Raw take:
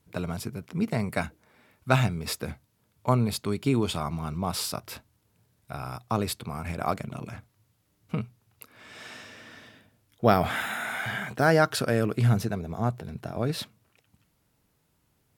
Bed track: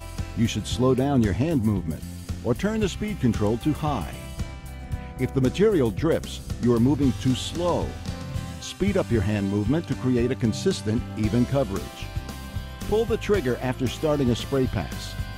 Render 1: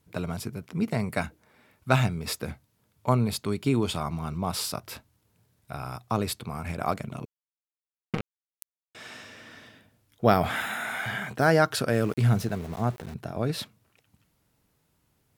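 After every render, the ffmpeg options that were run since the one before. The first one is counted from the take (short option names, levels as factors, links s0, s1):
-filter_complex "[0:a]asettb=1/sr,asplit=3[s0][s1][s2];[s0]atrim=end=7.254[s3];[s1]atrim=start=7.25:end=8.95,asetpts=PTS-STARTPTS,afade=t=in:d=0.004:c=qsin,afade=t=out:st=1.696:d=0.004:c=qsin,acrusher=bits=3:mix=0:aa=0.5[s4];[s2]atrim=start=8.946[s5];[s3][s4]acrossfade=d=0.004:c1=hsin:c2=qsin[s6];[s6][s5]acrossfade=d=0.004:c1=qsin:c2=hsin,asettb=1/sr,asplit=3[s7][s8][s9];[s7]atrim=end=11.934[s10];[s8]atrim=start=11.93:end=13.14,asetpts=PTS-STARTPTS,afade=t=in:d=0.004:c=qsin,afade=t=out:st=1.206:d=0.004:c=qsin,aeval=exprs='val(0)*gte(abs(val(0)),0.00944)':c=same[s11];[s9]atrim=start=13.136[s12];[s10][s11]acrossfade=d=0.004:c1=hsin:c2=qsin[s13];[s13][s12]acrossfade=d=0.004:c1=qsin:c2=hsin"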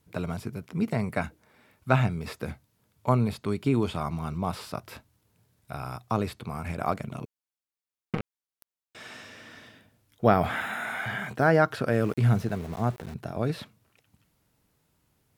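-filter_complex "[0:a]acrossover=split=2700[s0][s1];[s1]acompressor=threshold=0.00501:ratio=4:attack=1:release=60[s2];[s0][s2]amix=inputs=2:normalize=0"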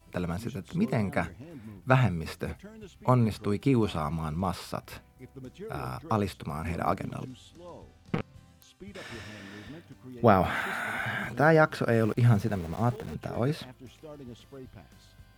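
-filter_complex "[1:a]volume=0.075[s0];[0:a][s0]amix=inputs=2:normalize=0"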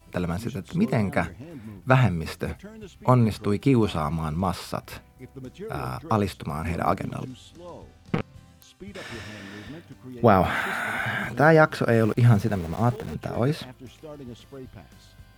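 -af "volume=1.68,alimiter=limit=0.708:level=0:latency=1"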